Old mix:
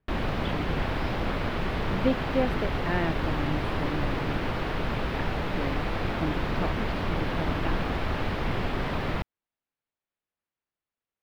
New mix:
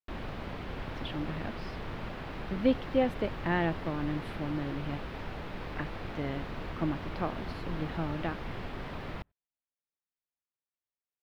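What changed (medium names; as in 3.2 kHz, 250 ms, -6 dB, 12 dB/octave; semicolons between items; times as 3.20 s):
speech: entry +0.60 s; background -10.5 dB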